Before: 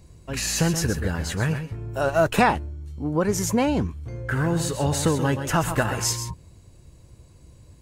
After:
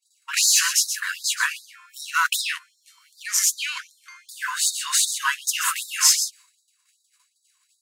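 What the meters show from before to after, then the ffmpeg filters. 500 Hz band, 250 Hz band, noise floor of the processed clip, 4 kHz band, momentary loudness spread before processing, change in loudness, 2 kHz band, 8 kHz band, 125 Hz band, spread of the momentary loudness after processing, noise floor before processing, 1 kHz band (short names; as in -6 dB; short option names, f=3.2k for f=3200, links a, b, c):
under -40 dB, under -40 dB, -70 dBFS, +9.5 dB, 11 LU, +3.0 dB, +4.0 dB, +10.0 dB, under -40 dB, 14 LU, -51 dBFS, -4.0 dB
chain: -filter_complex "[0:a]agate=range=-33dB:threshold=-39dB:ratio=3:detection=peak,highpass=500,asplit=2[a][b];[b]aeval=exprs='clip(val(0),-1,0.0376)':c=same,volume=-5dB[c];[a][c]amix=inputs=2:normalize=0,afftfilt=real='re*gte(b*sr/1024,910*pow(3700/910,0.5+0.5*sin(2*PI*2.6*pts/sr)))':imag='im*gte(b*sr/1024,910*pow(3700/910,0.5+0.5*sin(2*PI*2.6*pts/sr)))':win_size=1024:overlap=0.75,volume=6.5dB"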